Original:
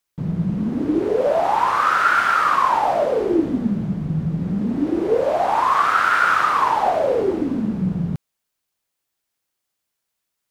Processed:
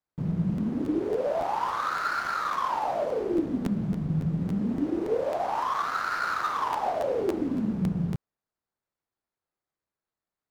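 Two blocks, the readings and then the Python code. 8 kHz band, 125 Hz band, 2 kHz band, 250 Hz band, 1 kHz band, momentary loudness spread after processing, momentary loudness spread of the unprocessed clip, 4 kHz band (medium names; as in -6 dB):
-8.0 dB, -5.0 dB, -12.5 dB, -6.5 dB, -11.0 dB, 1 LU, 8 LU, -9.0 dB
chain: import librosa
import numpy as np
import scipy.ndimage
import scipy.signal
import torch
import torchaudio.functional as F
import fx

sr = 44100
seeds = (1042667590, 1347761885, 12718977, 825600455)

y = scipy.signal.medfilt(x, 15)
y = fx.rider(y, sr, range_db=4, speed_s=0.5)
y = fx.buffer_crackle(y, sr, first_s=0.56, period_s=0.28, block=512, kind='repeat')
y = F.gain(torch.from_numpy(y), -8.5).numpy()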